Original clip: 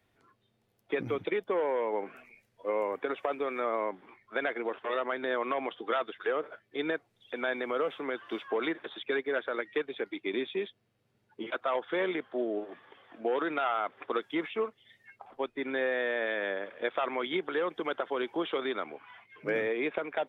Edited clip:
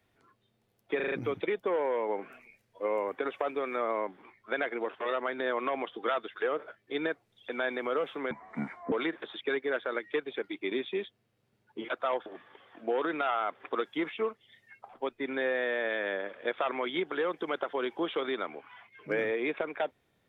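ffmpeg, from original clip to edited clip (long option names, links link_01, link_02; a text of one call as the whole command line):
ffmpeg -i in.wav -filter_complex "[0:a]asplit=8[link_01][link_02][link_03][link_04][link_05][link_06][link_07][link_08];[link_01]atrim=end=1.002[link_09];[link_02]atrim=start=0.958:end=1.002[link_10];[link_03]atrim=start=0.958:end=1.002[link_11];[link_04]atrim=start=0.958:end=1.002[link_12];[link_05]atrim=start=0.958:end=8.154[link_13];[link_06]atrim=start=8.15:end=8.54,asetpts=PTS-STARTPTS,asetrate=28224,aresample=44100,atrim=end_sample=26873,asetpts=PTS-STARTPTS[link_14];[link_07]atrim=start=8.536:end=11.882[link_15];[link_08]atrim=start=12.628[link_16];[link_09][link_10]acrossfade=duration=0.004:curve1=hsin:curve2=hsin[link_17];[link_17][link_11]acrossfade=duration=0.004:curve1=hsin:curve2=hsin[link_18];[link_18][link_12]acrossfade=duration=0.004:curve1=hsin:curve2=hsin[link_19];[link_19][link_13]acrossfade=duration=0.004:curve1=hsin:curve2=hsin[link_20];[link_20][link_14]acrossfade=duration=0.004:curve1=hsin:curve2=hsin[link_21];[link_21][link_15]acrossfade=duration=0.004:curve1=hsin:curve2=hsin[link_22];[link_22][link_16]acrossfade=duration=0.004:curve1=hsin:curve2=hsin" out.wav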